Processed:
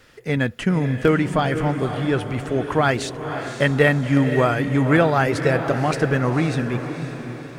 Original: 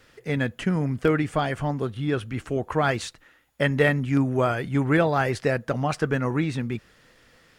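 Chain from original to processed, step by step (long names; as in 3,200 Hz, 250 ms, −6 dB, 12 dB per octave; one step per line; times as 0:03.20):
feedback delay with all-pass diffusion 527 ms, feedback 47%, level −8.5 dB
level +4 dB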